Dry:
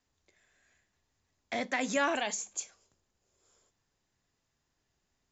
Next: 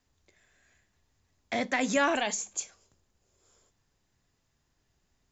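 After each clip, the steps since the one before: low shelf 170 Hz +6 dB; gain +3 dB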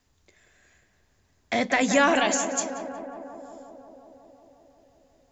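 tape echo 0.18 s, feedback 86%, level -7 dB, low-pass 1700 Hz; gain +5.5 dB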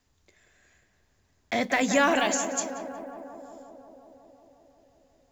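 block floating point 7-bit; gain -2 dB

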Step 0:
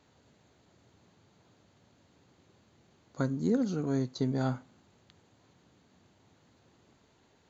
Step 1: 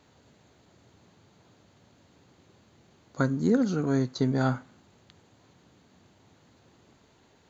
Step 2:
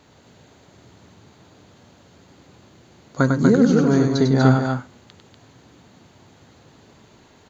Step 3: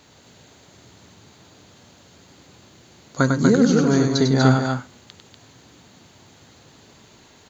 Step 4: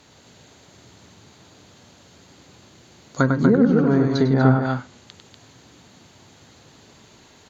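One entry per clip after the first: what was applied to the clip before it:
dynamic EQ 1500 Hz, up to +5 dB, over -58 dBFS, Q 1.6; gain +4.5 dB
loudspeakers at several distances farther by 34 m -5 dB, 83 m -5 dB; gain +7.5 dB
high shelf 2500 Hz +8.5 dB; gain -1 dB
treble ducked by the level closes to 1500 Hz, closed at -12.5 dBFS

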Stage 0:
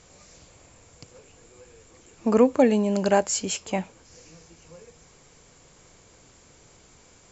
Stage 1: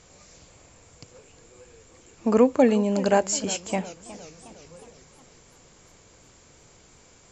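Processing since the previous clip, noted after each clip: warbling echo 0.363 s, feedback 54%, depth 145 cents, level -17 dB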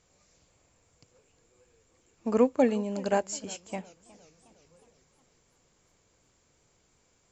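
upward expander 1.5:1, over -33 dBFS; gain -4 dB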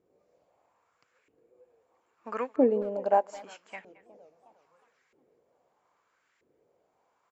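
LFO band-pass saw up 0.78 Hz 340–2000 Hz; speakerphone echo 0.22 s, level -19 dB; gain +6.5 dB

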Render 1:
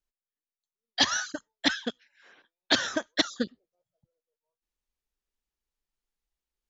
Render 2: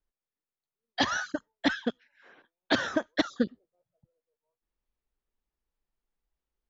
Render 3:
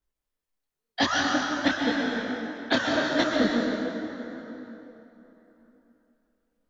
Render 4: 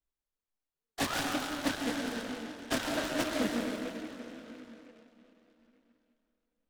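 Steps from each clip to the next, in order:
LPF 1200 Hz 6 dB/oct; in parallel at -3 dB: limiter -21.5 dBFS, peak gain reduction 8 dB
plate-style reverb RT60 3.5 s, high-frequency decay 0.65×, pre-delay 0.115 s, DRR -1 dB; detuned doubles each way 30 cents; gain +6 dB
noise-modulated delay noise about 1700 Hz, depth 0.095 ms; gain -8 dB

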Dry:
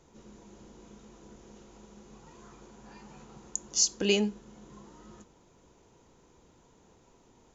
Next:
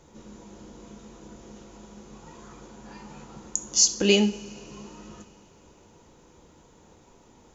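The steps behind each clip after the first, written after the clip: two-slope reverb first 0.41 s, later 3.4 s, from -20 dB, DRR 7.5 dB; gain +5.5 dB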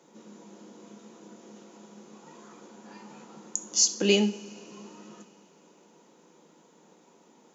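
elliptic high-pass 170 Hz, stop band 40 dB; gain -2 dB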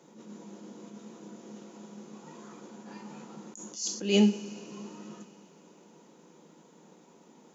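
low shelf 180 Hz +10 dB; attack slew limiter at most 120 dB/s

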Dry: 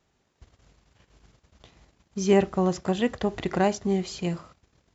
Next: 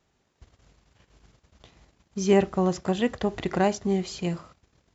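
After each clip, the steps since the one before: nothing audible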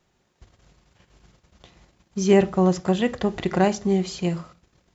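reverb, pre-delay 5 ms, DRR 11 dB; gain +2.5 dB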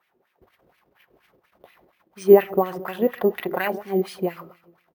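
feedback echo 0.137 s, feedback 47%, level -19.5 dB; LFO band-pass sine 4.2 Hz 360–2400 Hz; careless resampling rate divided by 3×, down filtered, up hold; gain +8 dB

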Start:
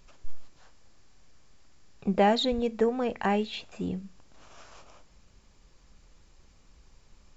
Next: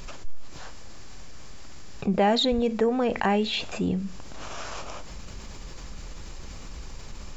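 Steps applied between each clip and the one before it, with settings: fast leveller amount 50%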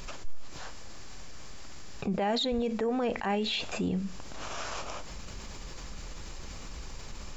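low shelf 370 Hz -3 dB; limiter -22 dBFS, peak gain reduction 10.5 dB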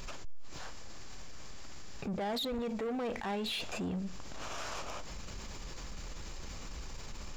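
sample leveller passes 2; gain -9 dB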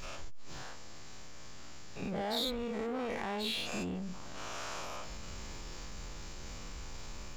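spectral dilation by 0.12 s; gain -5 dB

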